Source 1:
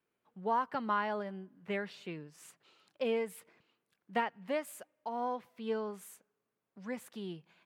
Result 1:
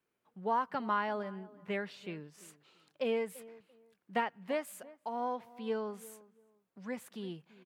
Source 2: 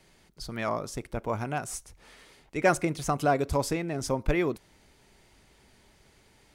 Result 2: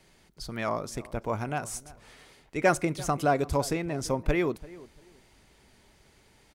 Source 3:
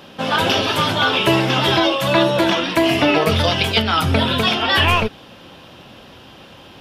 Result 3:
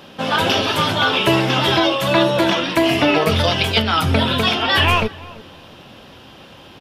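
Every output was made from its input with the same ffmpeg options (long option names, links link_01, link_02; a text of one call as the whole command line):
ffmpeg -i in.wav -filter_complex "[0:a]asplit=2[link_01][link_02];[link_02]adelay=339,lowpass=frequency=1400:poles=1,volume=-19dB,asplit=2[link_03][link_04];[link_04]adelay=339,lowpass=frequency=1400:poles=1,volume=0.24[link_05];[link_01][link_03][link_05]amix=inputs=3:normalize=0" out.wav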